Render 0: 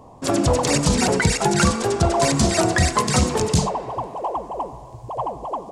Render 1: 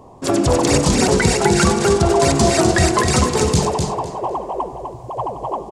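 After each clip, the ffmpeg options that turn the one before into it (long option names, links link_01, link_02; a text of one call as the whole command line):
ffmpeg -i in.wav -filter_complex "[0:a]equalizer=frequency=380:width_type=o:width=0.24:gain=7.5,asplit=2[link_01][link_02];[link_02]aecho=0:1:252|504|756:0.562|0.129|0.0297[link_03];[link_01][link_03]amix=inputs=2:normalize=0,volume=1.5dB" out.wav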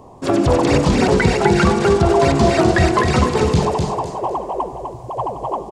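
ffmpeg -i in.wav -filter_complex "[0:a]acrossover=split=4100[link_01][link_02];[link_02]acompressor=threshold=-39dB:ratio=4:attack=1:release=60[link_03];[link_01][link_03]amix=inputs=2:normalize=0,volume=1dB" out.wav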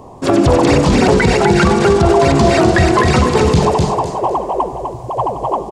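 ffmpeg -i in.wav -af "alimiter=level_in=6.5dB:limit=-1dB:release=50:level=0:latency=1,volume=-1dB" out.wav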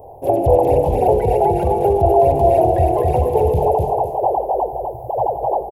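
ffmpeg -i in.wav -af "firequalizer=gain_entry='entry(100,0);entry(210,-17);entry(460,4);entry(810,6);entry(1200,-30);entry(2600,-15);entry(4300,-28);entry(8100,-22);entry(12000,13)':delay=0.05:min_phase=1,volume=-3.5dB" out.wav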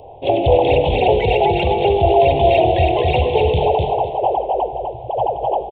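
ffmpeg -i in.wav -af "aresample=8000,aresample=44100,aexciter=amount=10.1:drive=8.8:freq=2400" out.wav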